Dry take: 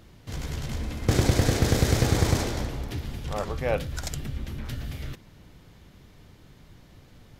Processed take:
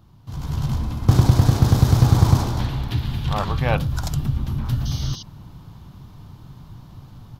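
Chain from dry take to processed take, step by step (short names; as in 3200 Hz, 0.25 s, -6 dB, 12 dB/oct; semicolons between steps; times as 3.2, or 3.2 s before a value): AGC gain up to 10 dB; 2.59–3.77 band shelf 2600 Hz +8.5 dB; 4.85–5.23 painted sound noise 2800–6500 Hz -30 dBFS; graphic EQ 125/500/1000/2000/8000 Hz +8/-9/+9/-12/-7 dB; gain -3 dB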